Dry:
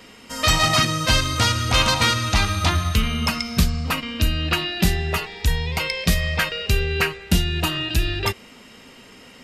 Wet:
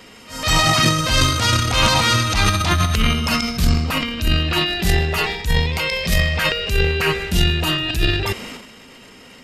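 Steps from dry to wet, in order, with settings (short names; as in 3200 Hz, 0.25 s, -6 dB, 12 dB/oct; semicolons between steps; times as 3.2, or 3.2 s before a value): transient shaper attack -8 dB, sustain +11 dB; reverse echo 0.164 s -21 dB; gain +2 dB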